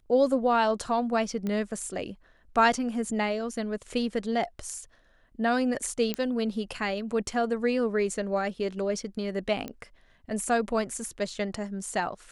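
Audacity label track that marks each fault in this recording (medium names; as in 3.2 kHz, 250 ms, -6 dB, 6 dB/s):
1.470000	1.470000	pop -20 dBFS
6.140000	6.140000	pop -13 dBFS
9.680000	9.680000	pop -20 dBFS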